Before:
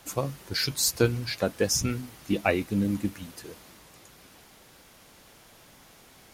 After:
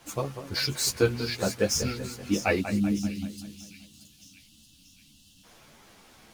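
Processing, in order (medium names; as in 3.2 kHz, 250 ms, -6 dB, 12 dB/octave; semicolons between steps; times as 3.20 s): median filter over 3 samples; time-frequency box 2.60–5.44 s, 310–2600 Hz -25 dB; two-band feedback delay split 2.8 kHz, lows 192 ms, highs 627 ms, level -10 dB; three-phase chorus; trim +2.5 dB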